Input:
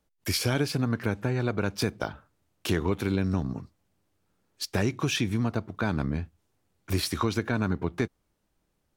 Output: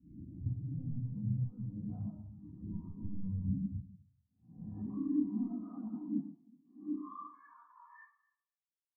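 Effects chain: spectral swells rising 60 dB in 0.88 s; HPF 63 Hz 24 dB/oct, from 4.71 s 240 Hz, from 6.93 s 1100 Hz; de-esser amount 85%; LPF 1500 Hz 24 dB/oct; comb 1 ms, depth 75%; compressor, threshold -28 dBFS, peak gain reduction 10.5 dB; limiter -28.5 dBFS, peak gain reduction 11.5 dB; hard clip -34.5 dBFS, distortion -12 dB; echo with dull and thin repeats by turns 0.125 s, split 1000 Hz, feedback 57%, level -3 dB; reverb RT60 1.2 s, pre-delay 4 ms, DRR -2 dB; spectral expander 2.5:1; gain -4.5 dB

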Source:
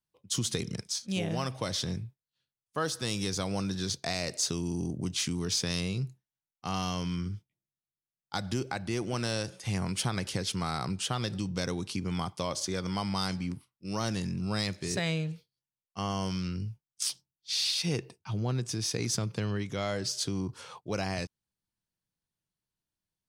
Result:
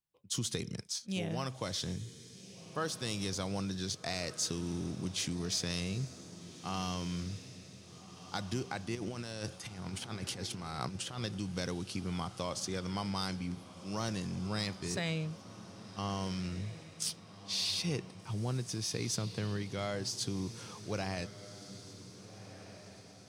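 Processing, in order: 8.95–11.19 negative-ratio compressor -35 dBFS, ratio -0.5; diffused feedback echo 1.593 s, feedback 50%, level -13.5 dB; gain -4.5 dB

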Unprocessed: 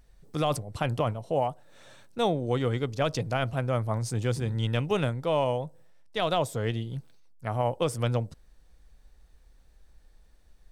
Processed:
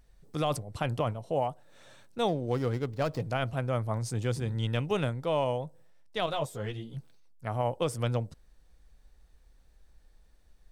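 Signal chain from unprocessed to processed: 2.28–3.24 median filter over 15 samples; 6.26–6.97 ensemble effect; gain -2.5 dB

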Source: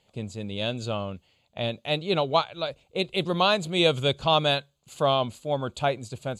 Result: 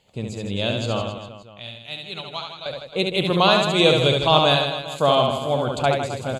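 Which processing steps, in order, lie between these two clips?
1.02–2.66 passive tone stack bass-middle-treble 5-5-5; reverse bouncing-ball echo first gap 70 ms, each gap 1.25×, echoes 5; gain +4 dB

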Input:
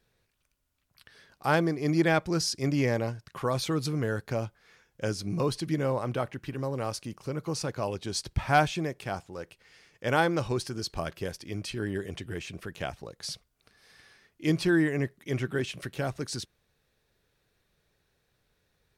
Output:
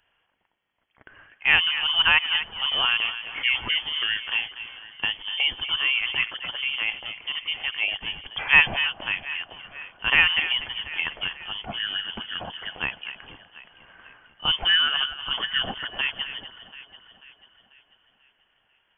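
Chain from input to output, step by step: HPF 500 Hz 6 dB/oct; echo with dull and thin repeats by turns 0.245 s, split 2400 Hz, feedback 69%, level -11.5 dB; inverted band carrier 3300 Hz; gain +8 dB

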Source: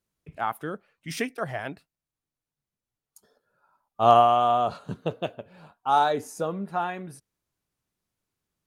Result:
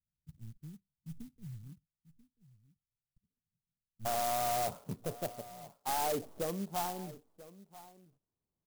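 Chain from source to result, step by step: tracing distortion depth 0.21 ms; inverse Chebyshev low-pass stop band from 810 Hz, stop band 70 dB, from 4.05 s stop band from 4700 Hz; limiter -17 dBFS, peak gain reduction 11.5 dB; overloaded stage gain 24 dB; echo 0.988 s -18 dB; clock jitter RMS 0.1 ms; gain -5.5 dB

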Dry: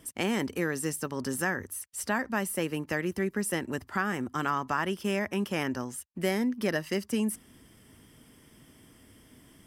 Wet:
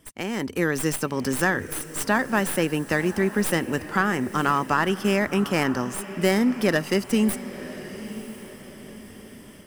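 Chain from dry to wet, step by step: tracing distortion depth 0.057 ms; AGC gain up to 10 dB; diffused feedback echo 1.016 s, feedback 40%, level -14 dB; gain -2.5 dB

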